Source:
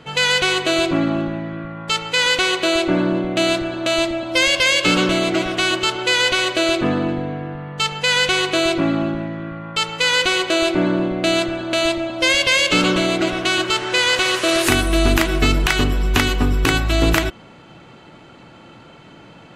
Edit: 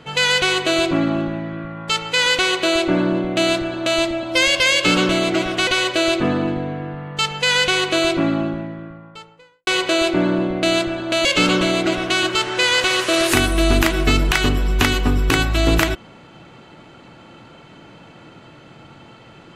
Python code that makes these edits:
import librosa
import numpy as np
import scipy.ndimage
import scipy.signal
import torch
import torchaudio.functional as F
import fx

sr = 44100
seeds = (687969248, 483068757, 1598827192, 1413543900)

y = fx.studio_fade_out(x, sr, start_s=8.77, length_s=1.51)
y = fx.edit(y, sr, fx.cut(start_s=5.67, length_s=0.61),
    fx.cut(start_s=11.86, length_s=0.74), tone=tone)